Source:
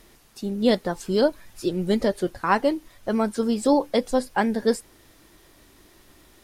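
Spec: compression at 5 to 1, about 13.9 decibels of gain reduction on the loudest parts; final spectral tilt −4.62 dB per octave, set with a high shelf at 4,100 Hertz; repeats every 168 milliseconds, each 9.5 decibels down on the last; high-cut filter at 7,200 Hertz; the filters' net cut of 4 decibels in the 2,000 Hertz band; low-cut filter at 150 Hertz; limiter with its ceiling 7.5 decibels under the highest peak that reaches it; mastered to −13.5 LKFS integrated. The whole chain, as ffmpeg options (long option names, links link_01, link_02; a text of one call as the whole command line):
ffmpeg -i in.wav -af "highpass=150,lowpass=7200,equalizer=frequency=2000:width_type=o:gain=-7,highshelf=frequency=4100:gain=8.5,acompressor=threshold=-31dB:ratio=5,alimiter=level_in=2dB:limit=-24dB:level=0:latency=1,volume=-2dB,aecho=1:1:168|336|504|672:0.335|0.111|0.0365|0.012,volume=23dB" out.wav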